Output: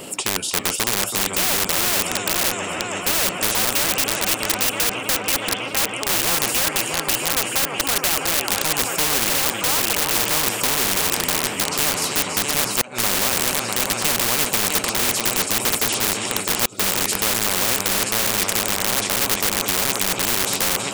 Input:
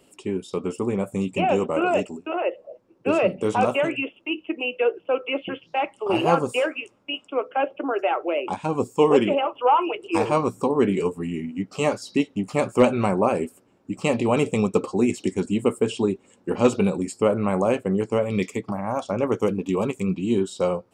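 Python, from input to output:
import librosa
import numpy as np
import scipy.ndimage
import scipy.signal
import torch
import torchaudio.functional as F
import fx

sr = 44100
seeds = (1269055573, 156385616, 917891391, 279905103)

p1 = scipy.signal.sosfilt(scipy.signal.butter(2, 110.0, 'highpass', fs=sr, output='sos'), x)
p2 = fx.high_shelf(p1, sr, hz=8900.0, db=5.5)
p3 = fx.echo_heads(p2, sr, ms=326, heads='all three', feedback_pct=50, wet_db=-13.5)
p4 = fx.gate_flip(p3, sr, shuts_db=-5.0, range_db=-36)
p5 = (np.mod(10.0 ** (19.5 / 20.0) * p4 + 1.0, 2.0) - 1.0) / 10.0 ** (19.5 / 20.0)
p6 = p4 + (p5 * 10.0 ** (-4.0 / 20.0))
p7 = fx.spectral_comp(p6, sr, ratio=4.0)
y = p7 * 10.0 ** (3.5 / 20.0)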